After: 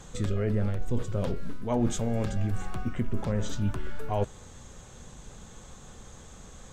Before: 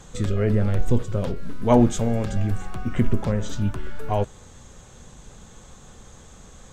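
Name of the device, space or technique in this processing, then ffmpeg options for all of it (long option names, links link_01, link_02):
compression on the reversed sound: -af "areverse,acompressor=threshold=-21dB:ratio=6,areverse,volume=-1.5dB"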